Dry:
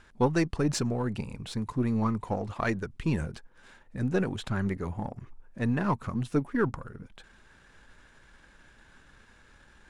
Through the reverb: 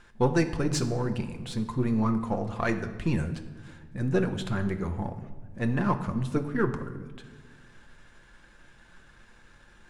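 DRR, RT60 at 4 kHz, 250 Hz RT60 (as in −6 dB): 5.5 dB, 0.95 s, 2.2 s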